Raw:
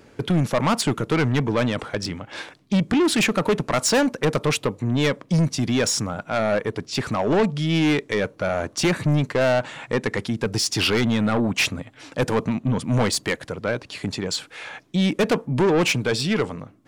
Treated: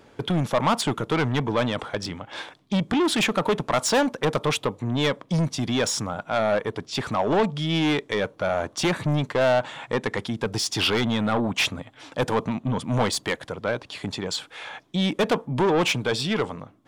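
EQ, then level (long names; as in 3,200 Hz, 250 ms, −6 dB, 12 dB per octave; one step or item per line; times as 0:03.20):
parametric band 890 Hz +6 dB 1.3 octaves
parametric band 3,400 Hz +6.5 dB 0.29 octaves
−4.0 dB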